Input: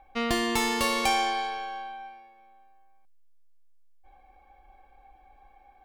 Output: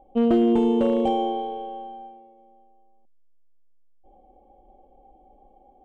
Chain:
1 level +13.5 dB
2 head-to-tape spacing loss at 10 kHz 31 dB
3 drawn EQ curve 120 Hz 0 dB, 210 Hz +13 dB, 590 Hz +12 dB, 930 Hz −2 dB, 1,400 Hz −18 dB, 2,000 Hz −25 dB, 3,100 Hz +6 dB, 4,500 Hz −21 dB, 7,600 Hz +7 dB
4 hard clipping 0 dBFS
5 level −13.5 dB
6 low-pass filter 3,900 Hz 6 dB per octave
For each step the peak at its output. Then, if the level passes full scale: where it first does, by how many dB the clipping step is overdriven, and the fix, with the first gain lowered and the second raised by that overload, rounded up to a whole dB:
+2.0, −2.5, +5.5, 0.0, −13.5, −13.5 dBFS
step 1, 5.5 dB
step 1 +7.5 dB, step 5 −7.5 dB

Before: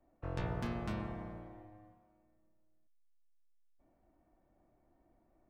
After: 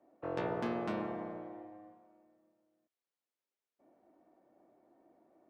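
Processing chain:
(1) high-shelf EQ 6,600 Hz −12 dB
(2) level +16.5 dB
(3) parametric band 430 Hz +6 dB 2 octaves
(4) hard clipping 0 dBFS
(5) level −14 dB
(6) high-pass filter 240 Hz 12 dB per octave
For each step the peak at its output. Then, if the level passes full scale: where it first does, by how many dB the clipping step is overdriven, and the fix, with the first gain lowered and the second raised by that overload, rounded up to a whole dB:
−23.5, −7.0, −5.0, −5.0, −19.0, −21.5 dBFS
no step passes full scale

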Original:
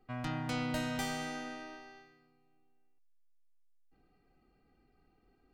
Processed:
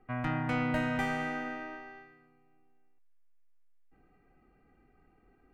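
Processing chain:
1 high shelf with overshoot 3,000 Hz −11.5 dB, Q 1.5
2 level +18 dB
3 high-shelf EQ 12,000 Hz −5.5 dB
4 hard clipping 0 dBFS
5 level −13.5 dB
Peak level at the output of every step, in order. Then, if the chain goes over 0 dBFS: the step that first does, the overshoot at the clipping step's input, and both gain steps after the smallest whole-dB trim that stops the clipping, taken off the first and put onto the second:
−23.5, −5.5, −5.5, −5.5, −19.0 dBFS
no step passes full scale

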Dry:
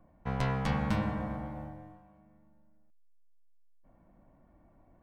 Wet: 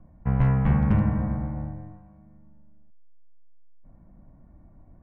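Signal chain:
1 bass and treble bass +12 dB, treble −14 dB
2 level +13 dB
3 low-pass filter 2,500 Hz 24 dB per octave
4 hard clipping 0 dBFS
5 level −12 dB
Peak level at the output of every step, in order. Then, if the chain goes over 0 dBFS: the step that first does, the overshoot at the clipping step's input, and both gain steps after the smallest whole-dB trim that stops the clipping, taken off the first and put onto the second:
−8.0, +5.0, +5.0, 0.0, −12.0 dBFS
step 2, 5.0 dB
step 2 +8 dB, step 5 −7 dB

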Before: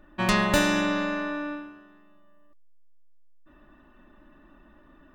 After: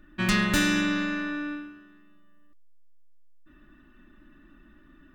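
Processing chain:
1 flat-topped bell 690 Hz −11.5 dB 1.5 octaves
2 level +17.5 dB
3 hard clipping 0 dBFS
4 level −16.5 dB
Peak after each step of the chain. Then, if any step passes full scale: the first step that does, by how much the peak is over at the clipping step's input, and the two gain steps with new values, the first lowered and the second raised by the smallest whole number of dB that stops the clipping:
−9.0, +8.5, 0.0, −16.5 dBFS
step 2, 8.5 dB
step 2 +8.5 dB, step 4 −7.5 dB

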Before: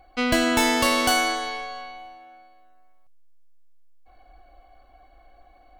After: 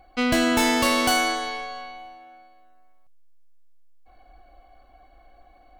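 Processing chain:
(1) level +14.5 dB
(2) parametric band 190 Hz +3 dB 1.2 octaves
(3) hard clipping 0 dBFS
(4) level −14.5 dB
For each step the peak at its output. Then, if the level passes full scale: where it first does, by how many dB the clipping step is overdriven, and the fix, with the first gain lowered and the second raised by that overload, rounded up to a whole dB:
+8.0, +9.0, 0.0, −14.5 dBFS
step 1, 9.0 dB
step 1 +5.5 dB, step 4 −5.5 dB

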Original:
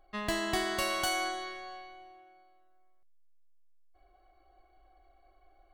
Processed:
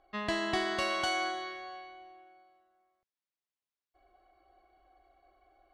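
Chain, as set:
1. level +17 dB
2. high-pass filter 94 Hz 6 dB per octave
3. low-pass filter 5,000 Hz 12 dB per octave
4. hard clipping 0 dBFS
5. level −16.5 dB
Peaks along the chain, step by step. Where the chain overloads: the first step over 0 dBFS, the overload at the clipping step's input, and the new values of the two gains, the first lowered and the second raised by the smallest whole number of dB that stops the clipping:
−0.5, −1.0, −2.0, −2.0, −18.5 dBFS
no step passes full scale

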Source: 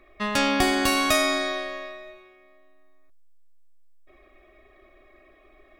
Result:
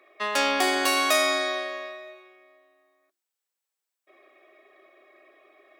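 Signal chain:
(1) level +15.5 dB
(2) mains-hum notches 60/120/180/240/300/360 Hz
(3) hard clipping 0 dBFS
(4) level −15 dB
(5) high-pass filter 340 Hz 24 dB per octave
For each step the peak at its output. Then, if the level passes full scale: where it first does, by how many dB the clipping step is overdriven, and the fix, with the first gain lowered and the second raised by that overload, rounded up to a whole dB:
+8.0, +7.5, 0.0, −15.0, −9.5 dBFS
step 1, 7.5 dB
step 1 +7.5 dB, step 4 −7 dB

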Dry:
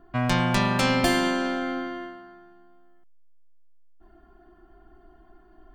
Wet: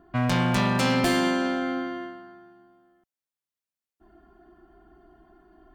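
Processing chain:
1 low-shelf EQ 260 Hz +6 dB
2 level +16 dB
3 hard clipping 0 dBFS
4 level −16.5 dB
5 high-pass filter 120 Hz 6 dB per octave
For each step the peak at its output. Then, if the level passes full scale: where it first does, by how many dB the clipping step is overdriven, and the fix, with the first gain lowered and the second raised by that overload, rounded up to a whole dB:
−6.5, +9.5, 0.0, −16.5, −12.0 dBFS
step 2, 9.5 dB
step 2 +6 dB, step 4 −6.5 dB

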